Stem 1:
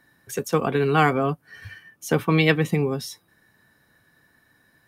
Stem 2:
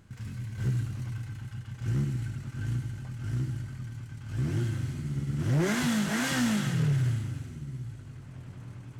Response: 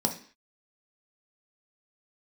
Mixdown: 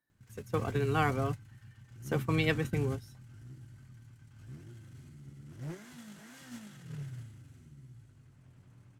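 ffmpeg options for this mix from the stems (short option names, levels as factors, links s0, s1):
-filter_complex "[0:a]volume=0.282[s0];[1:a]alimiter=level_in=2.24:limit=0.0631:level=0:latency=1:release=34,volume=0.447,adelay=100,volume=1.19[s1];[s0][s1]amix=inputs=2:normalize=0,agate=range=0.158:threshold=0.0251:ratio=16:detection=peak,highshelf=f=8700:g=6.5"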